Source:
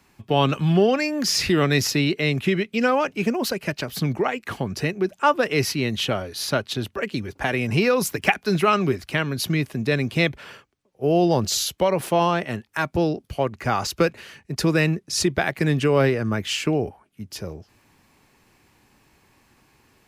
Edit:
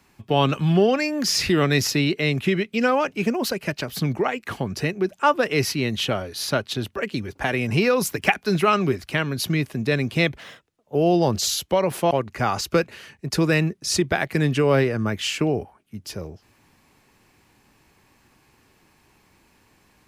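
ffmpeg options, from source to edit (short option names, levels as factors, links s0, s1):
-filter_complex "[0:a]asplit=4[s0][s1][s2][s3];[s0]atrim=end=10.394[s4];[s1]atrim=start=10.39:end=11.04,asetpts=PTS-STARTPTS,asetrate=51156,aresample=44100,atrim=end_sample=24711,asetpts=PTS-STARTPTS[s5];[s2]atrim=start=11.036:end=12.202[s6];[s3]atrim=start=13.368[s7];[s4][s5]acrossfade=d=0.004:c1=hsin:c2=hsin[s8];[s8][s6]acrossfade=d=0.004:c1=hsin:c2=hsin[s9];[s9][s7]acrossfade=d=0.004:c1=hsin:c2=hsin"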